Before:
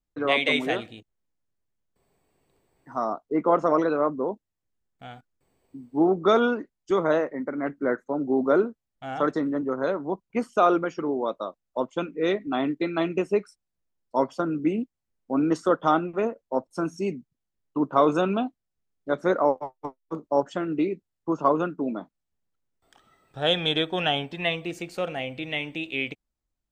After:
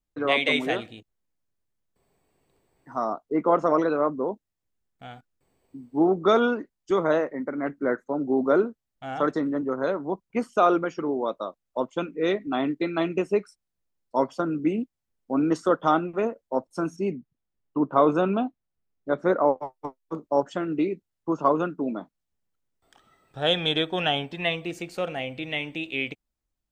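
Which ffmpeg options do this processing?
-filter_complex "[0:a]asettb=1/sr,asplit=3[a][b][c];[a]atrim=end=16.964[d];[b]atrim=start=16.96:end=19.6,asetpts=PTS-STARTPTS,afade=t=in:d=0.004:c=qsin,afade=t=out:st=2.636:d=0.004:c=qsin,aemphasis=mode=reproduction:type=75fm[e];[c]atrim=start=19.596[f];[d][e]acrossfade=d=0.004:c1=hsin:c2=qsin[g];[g][f]acrossfade=d=0.004:c1=qsin:c2=hsin"

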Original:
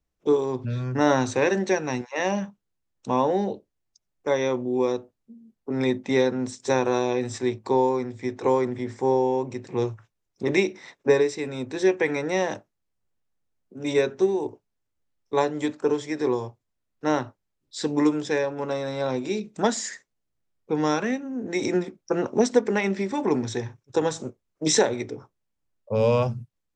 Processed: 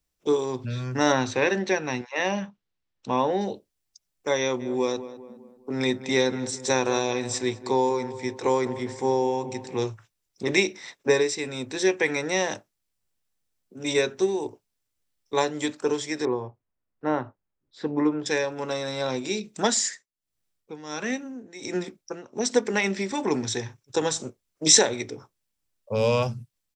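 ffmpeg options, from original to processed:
-filter_complex "[0:a]asettb=1/sr,asplit=3[a][b][c];[a]atrim=end=1.124[d];[b]atrim=start=1.12:end=3.41,asetpts=PTS-STARTPTS,afade=t=in:d=0.004:c=qsin,afade=t=out:st=2.286:d=0.004:c=qsin,lowpass=3.8k[e];[c]atrim=start=3.406[f];[d][e]acrossfade=d=0.004:c1=hsin:c2=qsin[g];[g][f]acrossfade=d=0.004:c1=qsin:c2=hsin,asplit=3[h][i][j];[h]afade=t=out:st=4.59:d=0.02[k];[i]asplit=2[l][m];[m]adelay=203,lowpass=f=1.6k:p=1,volume=-13dB,asplit=2[n][o];[o]adelay=203,lowpass=f=1.6k:p=1,volume=0.48,asplit=2[p][q];[q]adelay=203,lowpass=f=1.6k:p=1,volume=0.48,asplit=2[r][s];[s]adelay=203,lowpass=f=1.6k:p=1,volume=0.48,asplit=2[t][u];[u]adelay=203,lowpass=f=1.6k:p=1,volume=0.48[v];[l][n][p][r][t][v]amix=inputs=6:normalize=0,afade=t=in:st=4.59:d=0.02,afade=t=out:st=9.89:d=0.02[w];[j]afade=t=in:st=9.89:d=0.02[x];[k][w][x]amix=inputs=3:normalize=0,asettb=1/sr,asplit=3[y][z][aa];[y]atrim=end=16.254[ab];[z]atrim=start=16.25:end=18.26,asetpts=PTS-STARTPTS,afade=t=in:d=0.004:c=qsin,afade=t=out:st=2.006:d=0.004:c=qsin,lowpass=1.4k[ac];[aa]atrim=start=18.256[ad];[ab][ac]acrossfade=d=0.004:c1=hsin:c2=qsin[ae];[ae][ad]acrossfade=d=0.004:c1=qsin:c2=hsin,asettb=1/sr,asplit=3[af][ag][ah];[af]atrim=end=19.754[ai];[ag]atrim=start=19.75:end=22.74,asetpts=PTS-STARTPTS,afade=t=in:d=0.004:c=qsin,afade=t=out:st=2.986:d=0.004:c=qsin,tremolo=f=1.4:d=0.86[aj];[ah]atrim=start=22.736[ak];[ai][aj]acrossfade=d=0.004:c1=hsin:c2=qsin[al];[al][ak]acrossfade=d=0.004:c1=qsin:c2=hsin,highshelf=f=2.3k:g=12,bandreject=f=6.6k:w=24,volume=-2.5dB"

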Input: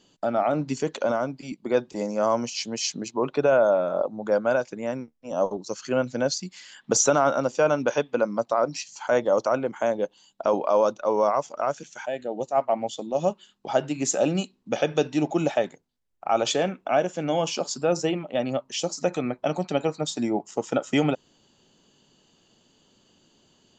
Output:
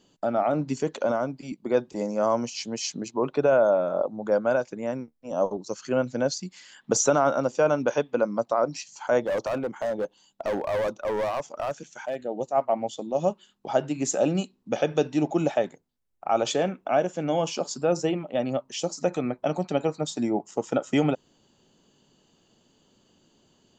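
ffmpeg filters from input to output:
-filter_complex "[0:a]asettb=1/sr,asplit=3[a][b][c];[a]atrim=end=9.244[d];[b]atrim=start=9.24:end=12.23,asetpts=PTS-STARTPTS,afade=t=in:d=0.004:c=qsin,afade=t=out:st=2.986:d=0.004:c=qsin,asoftclip=type=hard:threshold=-23dB[e];[c]atrim=start=12.226[f];[d][e]acrossfade=d=0.004:c1=hsin:c2=qsin[g];[g][f]acrossfade=d=0.004:c1=qsin:c2=hsin,equalizer=f=3.6k:t=o:w=2.8:g=-4"

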